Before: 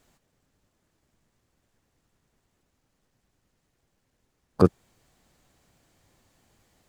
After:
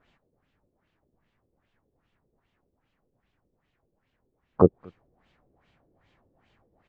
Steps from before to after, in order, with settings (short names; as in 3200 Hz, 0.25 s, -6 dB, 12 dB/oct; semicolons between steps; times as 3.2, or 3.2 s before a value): outdoor echo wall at 40 m, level -27 dB; LFO low-pass sine 2.5 Hz 400–3200 Hz; gain -2 dB